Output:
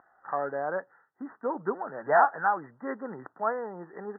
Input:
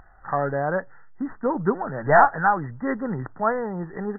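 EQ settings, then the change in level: high-pass 330 Hz 12 dB/octave; low-pass 1.8 kHz 24 dB/octave; -5.5 dB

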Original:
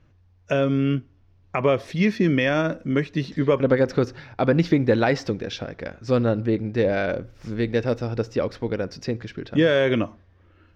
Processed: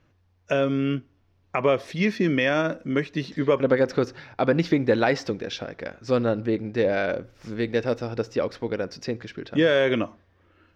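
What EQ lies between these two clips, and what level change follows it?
bass shelf 150 Hz -10 dB; 0.0 dB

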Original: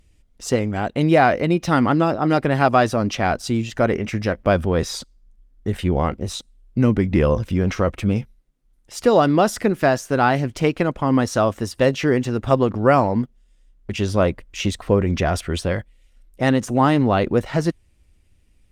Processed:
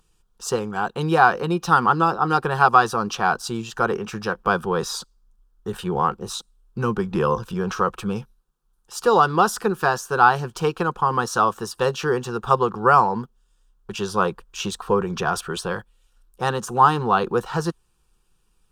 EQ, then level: peaking EQ 1.5 kHz +14 dB 2.5 oct; treble shelf 7.5 kHz +8.5 dB; static phaser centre 410 Hz, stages 8; -5.0 dB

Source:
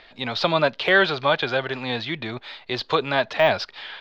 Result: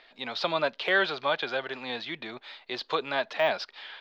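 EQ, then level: peaking EQ 94 Hz -13 dB 0.8 oct; bass shelf 150 Hz -10.5 dB; -6.5 dB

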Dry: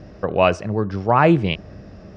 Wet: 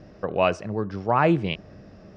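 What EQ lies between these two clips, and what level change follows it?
peaking EQ 64 Hz -6 dB 1.3 oct; -5.0 dB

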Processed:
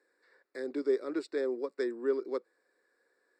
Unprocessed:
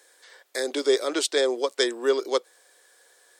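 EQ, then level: boxcar filter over 14 samples; tilt EQ -2 dB/octave; peaking EQ 720 Hz -14.5 dB 1.4 oct; -3.5 dB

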